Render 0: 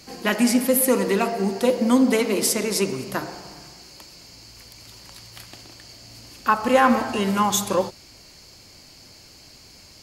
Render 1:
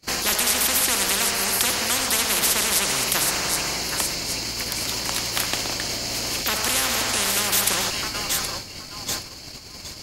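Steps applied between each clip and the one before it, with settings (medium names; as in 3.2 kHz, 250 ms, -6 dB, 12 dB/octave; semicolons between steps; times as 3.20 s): feedback echo behind a high-pass 772 ms, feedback 40%, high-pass 1.8 kHz, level -16.5 dB; gate -45 dBFS, range -37 dB; spectrum-flattening compressor 10:1; trim +3 dB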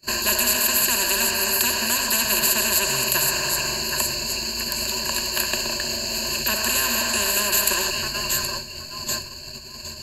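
rippled EQ curve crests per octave 1.4, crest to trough 17 dB; trim -3 dB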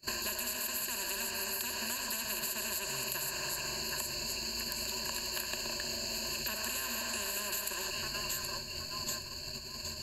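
compression 6:1, threshold -29 dBFS, peak gain reduction 13.5 dB; trim -5 dB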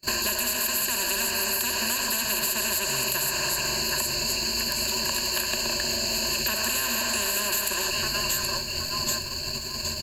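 waveshaping leveller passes 2; delay 532 ms -16 dB; trim +3 dB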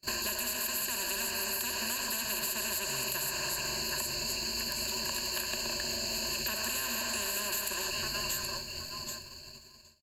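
fade out at the end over 1.73 s; trim -7.5 dB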